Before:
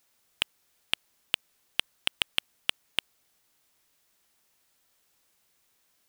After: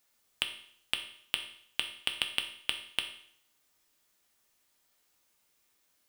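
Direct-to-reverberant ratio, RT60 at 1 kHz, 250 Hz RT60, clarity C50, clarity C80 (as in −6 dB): 4.5 dB, 0.60 s, 0.65 s, 9.5 dB, 12.5 dB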